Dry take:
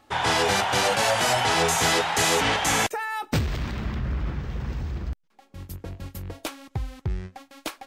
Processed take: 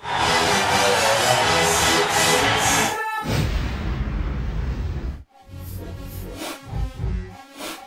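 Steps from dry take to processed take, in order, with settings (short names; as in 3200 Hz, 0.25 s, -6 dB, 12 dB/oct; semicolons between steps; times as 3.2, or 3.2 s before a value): phase scrambler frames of 0.2 s; gain +4 dB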